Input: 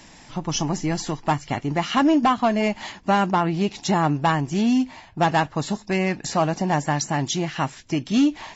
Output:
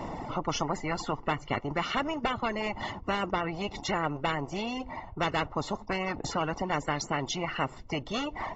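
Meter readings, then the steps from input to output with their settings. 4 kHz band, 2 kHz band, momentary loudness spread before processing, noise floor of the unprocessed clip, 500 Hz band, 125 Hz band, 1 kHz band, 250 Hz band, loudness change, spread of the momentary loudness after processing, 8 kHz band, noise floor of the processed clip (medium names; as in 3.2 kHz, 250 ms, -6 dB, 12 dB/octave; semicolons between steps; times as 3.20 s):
-5.5 dB, -5.0 dB, 7 LU, -48 dBFS, -7.5 dB, -11.0 dB, -8.5 dB, -13.5 dB, -9.5 dB, 4 LU, no reading, -48 dBFS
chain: reverb removal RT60 1.7 s; Savitzky-Golay filter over 65 samples; spectrum-flattening compressor 4:1; trim -5 dB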